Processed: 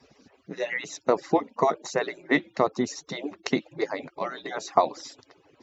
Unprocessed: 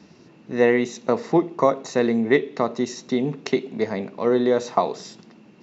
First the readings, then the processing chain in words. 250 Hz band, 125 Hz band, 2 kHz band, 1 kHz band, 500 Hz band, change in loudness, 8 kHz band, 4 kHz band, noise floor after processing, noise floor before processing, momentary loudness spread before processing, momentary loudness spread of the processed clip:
−8.0 dB, −8.0 dB, −2.0 dB, −1.0 dB, −6.5 dB, −5.5 dB, can't be measured, −1.5 dB, −65 dBFS, −51 dBFS, 8 LU, 10 LU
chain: harmonic-percussive split with one part muted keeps percussive

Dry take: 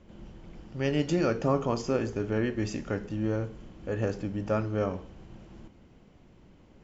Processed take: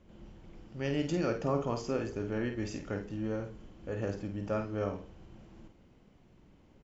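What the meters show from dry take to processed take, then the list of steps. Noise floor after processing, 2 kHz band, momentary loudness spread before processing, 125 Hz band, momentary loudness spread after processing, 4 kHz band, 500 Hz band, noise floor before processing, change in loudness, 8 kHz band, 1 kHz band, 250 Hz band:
−62 dBFS, −4.5 dB, 22 LU, −5.5 dB, 22 LU, −4.5 dB, −5.0 dB, −56 dBFS, −5.0 dB, can't be measured, −5.0 dB, −5.0 dB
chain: double-tracking delay 50 ms −7 dB
level −5.5 dB

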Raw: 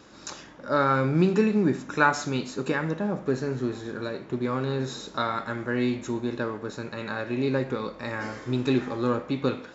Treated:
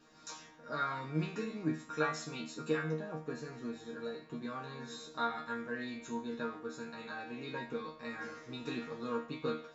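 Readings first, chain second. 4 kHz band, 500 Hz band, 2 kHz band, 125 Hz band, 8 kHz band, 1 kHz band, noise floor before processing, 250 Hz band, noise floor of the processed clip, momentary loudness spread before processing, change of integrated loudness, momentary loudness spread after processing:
−9.0 dB, −12.5 dB, −11.0 dB, −14.0 dB, can't be measured, −11.0 dB, −47 dBFS, −13.5 dB, −57 dBFS, 11 LU, −12.5 dB, 9 LU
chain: harmonic and percussive parts rebalanced harmonic −6 dB
resonators tuned to a chord D#3 fifth, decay 0.37 s
level +7.5 dB

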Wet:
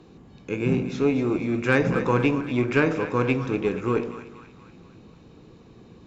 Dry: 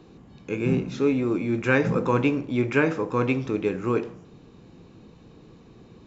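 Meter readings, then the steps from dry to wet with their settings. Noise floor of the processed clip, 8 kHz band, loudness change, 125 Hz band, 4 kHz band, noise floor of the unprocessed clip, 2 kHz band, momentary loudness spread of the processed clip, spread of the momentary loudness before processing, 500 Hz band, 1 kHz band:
−50 dBFS, can't be measured, +0.5 dB, +1.0 dB, +2.0 dB, −51 dBFS, +1.0 dB, 6 LU, 5 LU, +0.5 dB, +1.0 dB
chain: harmonic generator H 6 −27 dB, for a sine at −5 dBFS
echo with a time of its own for lows and highs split 870 Hz, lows 105 ms, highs 239 ms, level −11 dB

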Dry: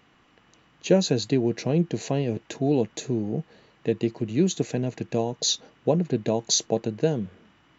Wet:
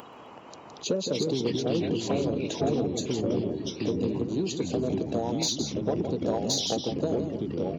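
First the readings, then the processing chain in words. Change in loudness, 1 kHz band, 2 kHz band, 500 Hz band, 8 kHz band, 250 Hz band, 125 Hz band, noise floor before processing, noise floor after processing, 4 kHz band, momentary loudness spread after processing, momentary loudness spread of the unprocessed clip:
−3.0 dB, −0.5 dB, −4.0 dB, −2.5 dB, can't be measured, −2.5 dB, −5.0 dB, −61 dBFS, −47 dBFS, −1.5 dB, 5 LU, 7 LU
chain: spectral magnitudes quantised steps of 30 dB
downward compressor 4 to 1, threshold −29 dBFS, peak gain reduction 13 dB
octave-band graphic EQ 125/250/500/1,000/2,000/4,000 Hz +4/+6/+8/+12/−12/+8 dB
single-tap delay 165 ms −8.5 dB
delay with pitch and tempo change per echo 131 ms, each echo −3 semitones, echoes 3
high-shelf EQ 5,900 Hz +9 dB
soft clipping −11.5 dBFS, distortion −19 dB
upward compression, threshold −31 dBFS
high-pass filter 92 Hz
level −5 dB

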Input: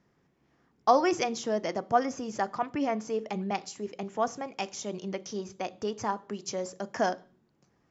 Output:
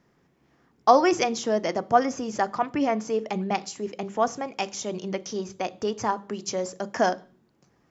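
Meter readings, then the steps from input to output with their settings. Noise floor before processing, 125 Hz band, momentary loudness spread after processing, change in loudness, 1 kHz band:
−71 dBFS, +4.0 dB, 11 LU, +5.0 dB, +5.0 dB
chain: mains-hum notches 50/100/150/200 Hz
level +5 dB

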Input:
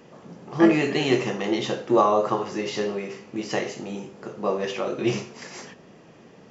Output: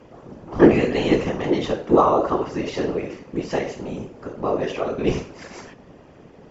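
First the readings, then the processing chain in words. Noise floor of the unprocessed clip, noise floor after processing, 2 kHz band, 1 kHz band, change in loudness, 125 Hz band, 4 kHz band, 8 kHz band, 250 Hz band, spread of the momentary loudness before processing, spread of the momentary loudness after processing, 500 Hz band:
−50 dBFS, −48 dBFS, −0.5 dB, +2.5 dB, +3.0 dB, +4.5 dB, −2.5 dB, can't be measured, +3.0 dB, 18 LU, 18 LU, +3.5 dB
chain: high-shelf EQ 2,200 Hz −8.5 dB
random phases in short frames
level +3.5 dB

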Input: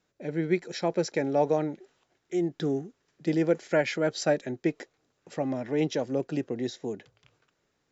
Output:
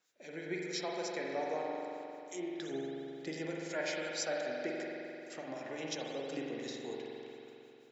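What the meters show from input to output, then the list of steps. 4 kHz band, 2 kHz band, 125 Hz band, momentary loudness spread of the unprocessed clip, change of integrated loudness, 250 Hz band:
−3.0 dB, −5.5 dB, −17.0 dB, 12 LU, −10.5 dB, −12.5 dB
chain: high-pass filter 890 Hz 6 dB per octave
high-shelf EQ 4,100 Hz +10.5 dB
downward compressor 2 to 1, threshold −39 dBFS, peak gain reduction 9 dB
two-band tremolo in antiphase 5.8 Hz, crossover 2,500 Hz
echo ahead of the sound 44 ms −22 dB
spring reverb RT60 3 s, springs 44 ms, chirp 45 ms, DRR −2.5 dB
level −1 dB

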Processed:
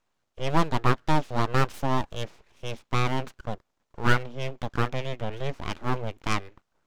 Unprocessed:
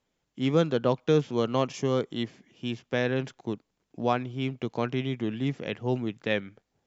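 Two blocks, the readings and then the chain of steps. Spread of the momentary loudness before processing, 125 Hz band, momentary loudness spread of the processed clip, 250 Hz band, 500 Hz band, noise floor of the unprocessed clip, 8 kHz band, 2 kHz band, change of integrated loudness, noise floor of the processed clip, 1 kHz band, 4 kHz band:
11 LU, +2.5 dB, 13 LU, −3.5 dB, −5.0 dB, −80 dBFS, can't be measured, +4.5 dB, 0.0 dB, −77 dBFS, +6.0 dB, +1.0 dB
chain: phase distortion by the signal itself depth 0.17 ms
parametric band 720 Hz +11.5 dB 0.72 octaves
full-wave rectification

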